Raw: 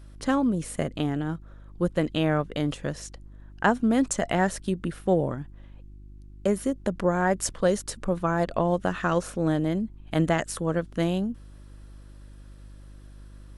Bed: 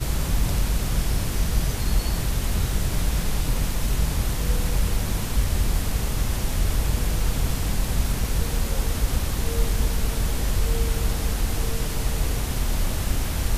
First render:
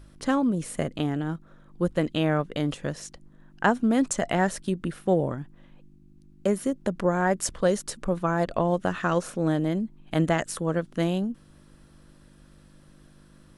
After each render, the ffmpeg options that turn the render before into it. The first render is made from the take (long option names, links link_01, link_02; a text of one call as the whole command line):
ffmpeg -i in.wav -af "bandreject=frequency=50:width_type=h:width=4,bandreject=frequency=100:width_type=h:width=4" out.wav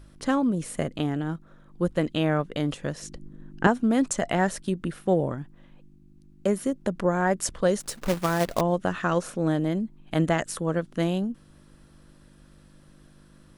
ffmpeg -i in.wav -filter_complex "[0:a]asettb=1/sr,asplit=3[link_01][link_02][link_03];[link_01]atrim=end=3.024[link_04];[link_02]atrim=start=3.02:end=3.67,asetpts=PTS-STARTPTS,afade=type=in:duration=0.004:curve=qsin,afade=type=out:start_time=0.646:duration=0.004:curve=qsin,lowshelf=frequency=510:width_type=q:width=1.5:gain=8.5[link_05];[link_03]atrim=start=3.666[link_06];[link_04][link_05]acrossfade=duration=0.004:curve1=hsin:curve2=qsin[link_07];[link_07][link_06]acrossfade=duration=0.004:curve1=qsin:curve2=hsin,asettb=1/sr,asplit=3[link_08][link_09][link_10];[link_08]atrim=end=7.804[link_11];[link_09]atrim=start=7.8:end=8.61,asetpts=PTS-STARTPTS,afade=type=in:duration=0.004:curve=qsin,afade=type=out:start_time=0.806:duration=0.004:curve=qsin,acrusher=bits=2:mode=log:mix=0:aa=0.000001[link_12];[link_10]atrim=start=8.606[link_13];[link_11][link_12]acrossfade=duration=0.004:curve1=hsin:curve2=qsin[link_14];[link_14][link_13]acrossfade=duration=0.004:curve1=qsin:curve2=hsin" out.wav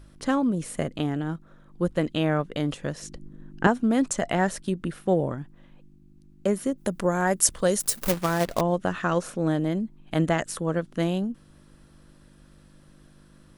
ffmpeg -i in.wav -filter_complex "[0:a]asplit=3[link_01][link_02][link_03];[link_01]afade=type=out:start_time=6.77:duration=0.02[link_04];[link_02]aemphasis=mode=production:type=50fm,afade=type=in:start_time=6.77:duration=0.02,afade=type=out:start_time=8.1:duration=0.02[link_05];[link_03]afade=type=in:start_time=8.1:duration=0.02[link_06];[link_04][link_05][link_06]amix=inputs=3:normalize=0" out.wav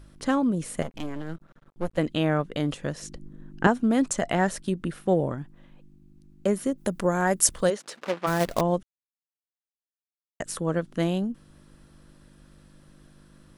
ffmpeg -i in.wav -filter_complex "[0:a]asettb=1/sr,asplit=3[link_01][link_02][link_03];[link_01]atrim=end=0.824[link_04];[link_02]atrim=start=0.82:end=1.98,asetpts=PTS-STARTPTS,afade=type=in:duration=0.004:curve=qsin,afade=type=out:start_time=1.156:duration=0.004:curve=qsin,aeval=exprs='max(val(0),0)':channel_layout=same[link_05];[link_03]atrim=start=1.976[link_06];[link_04][link_05]acrossfade=duration=0.004:curve1=hsin:curve2=qsin[link_07];[link_07][link_06]acrossfade=duration=0.004:curve1=qsin:curve2=hsin,asplit=3[link_08][link_09][link_10];[link_08]afade=type=out:start_time=7.69:duration=0.02[link_11];[link_09]highpass=350,lowpass=3100,afade=type=in:start_time=7.69:duration=0.02,afade=type=out:start_time=8.26:duration=0.02[link_12];[link_10]afade=type=in:start_time=8.26:duration=0.02[link_13];[link_11][link_12][link_13]amix=inputs=3:normalize=0,asplit=3[link_14][link_15][link_16];[link_14]atrim=end=8.83,asetpts=PTS-STARTPTS,afade=type=out:start_time=8.826:duration=0.004:curve=hsin[link_17];[link_15]atrim=start=8.83:end=10.4,asetpts=PTS-STARTPTS,volume=0[link_18];[link_16]atrim=start=10.4,asetpts=PTS-STARTPTS,afade=type=in:duration=0.004:curve=hsin[link_19];[link_17][link_18][link_19]concat=n=3:v=0:a=1" out.wav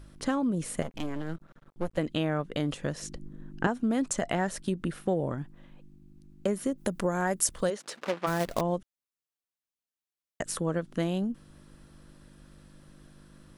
ffmpeg -i in.wav -af "acompressor=threshold=-26dB:ratio=2.5" out.wav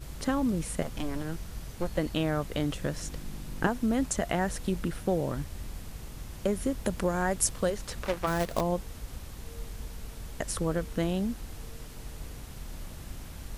ffmpeg -i in.wav -i bed.wav -filter_complex "[1:a]volume=-17.5dB[link_01];[0:a][link_01]amix=inputs=2:normalize=0" out.wav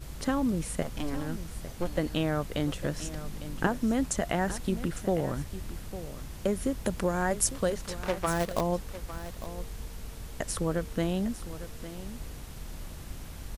ffmpeg -i in.wav -af "aecho=1:1:854:0.211" out.wav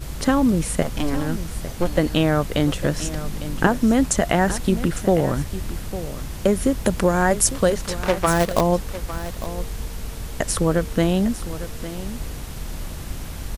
ffmpeg -i in.wav -af "volume=10dB,alimiter=limit=-1dB:level=0:latency=1" out.wav